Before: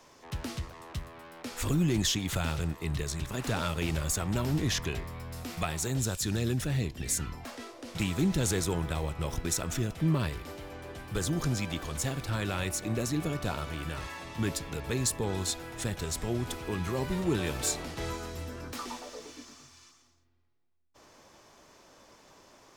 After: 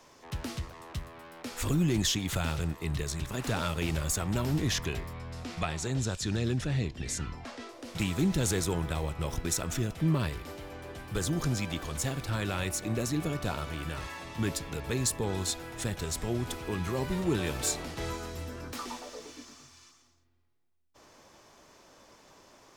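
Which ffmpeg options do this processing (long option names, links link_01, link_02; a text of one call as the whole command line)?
ffmpeg -i in.wav -filter_complex "[0:a]asettb=1/sr,asplit=3[link_01][link_02][link_03];[link_01]atrim=end=5.134[link_04];[link_02]atrim=start=5.13:end=7.69,asetpts=PTS-STARTPTS,afade=type=in:duration=0.004:curve=qsin,afade=type=out:start_time=2.556:duration=0.004:curve=qsin,lowpass=6400[link_05];[link_03]atrim=start=7.686[link_06];[link_04][link_05]acrossfade=duration=0.004:curve1=hsin:curve2=qsin[link_07];[link_07][link_06]acrossfade=duration=0.004:curve1=qsin:curve2=hsin" out.wav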